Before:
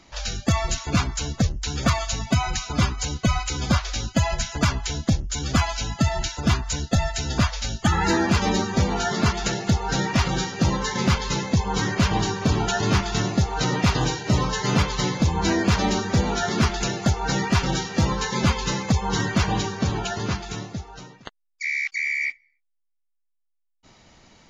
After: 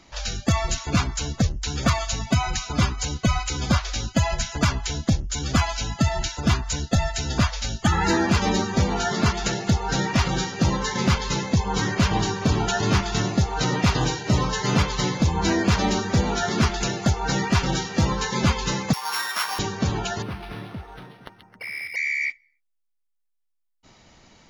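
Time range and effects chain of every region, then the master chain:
18.93–19.59 s: sorted samples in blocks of 8 samples + resonant high-pass 1.2 kHz, resonance Q 1.7
20.22–21.96 s: compression 2:1, threshold -32 dBFS + repeats whose band climbs or falls 134 ms, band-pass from 2.8 kHz, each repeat -0.7 oct, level -4 dB + decimation joined by straight lines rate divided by 6×
whole clip: none

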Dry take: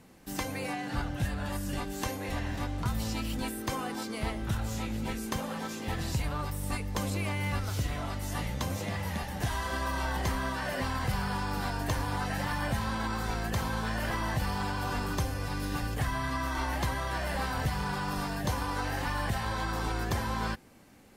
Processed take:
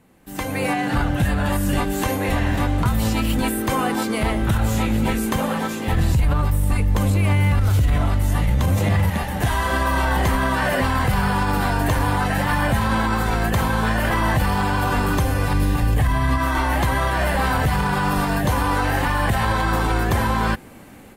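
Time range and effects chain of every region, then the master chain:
5.92–9.10 s: bass shelf 130 Hz +12 dB + level flattener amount 50%
15.53–16.38 s: peaking EQ 63 Hz +7.5 dB 2.5 oct + band-stop 1.4 kHz, Q 6.7
whole clip: level rider gain up to 14.5 dB; peak limiter -10.5 dBFS; peaking EQ 5.3 kHz -8 dB 0.83 oct

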